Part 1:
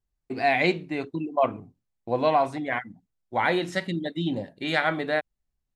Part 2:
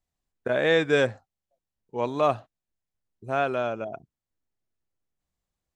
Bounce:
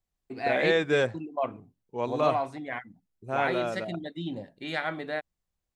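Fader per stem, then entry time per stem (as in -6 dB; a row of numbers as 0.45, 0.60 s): -7.0, -3.0 dB; 0.00, 0.00 s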